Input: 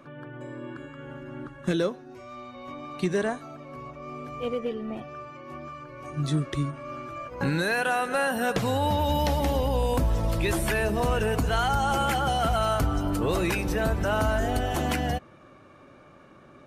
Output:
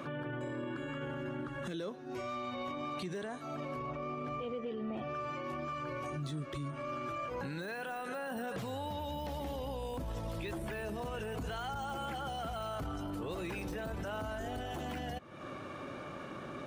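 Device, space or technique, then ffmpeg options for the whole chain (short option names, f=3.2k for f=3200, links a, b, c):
broadcast voice chain: -filter_complex "[0:a]asettb=1/sr,asplit=3[a][b][c];[a]atrim=end=3.794[d];[b]atrim=start=3.79:end=5.14,asetpts=PTS-STARTPTS,afade=t=in:d=0.004:c=qsin,afade=t=out:st=1.346:d=0.004:c=qsin,aemphasis=mode=reproduction:type=50fm[e];[c]atrim=start=5.136[f];[d][e]acrossfade=d=0.004:c1=hsin:c2=qsin[g];[g][f]acrossfade=d=0.004:c1=qsin:c2=hsin,highpass=f=79:p=1,deesser=0.9,acompressor=threshold=-42dB:ratio=5,equalizer=f=3.3k:t=o:w=0.5:g=3,alimiter=level_in=16dB:limit=-24dB:level=0:latency=1:release=15,volume=-16dB,volume=8dB"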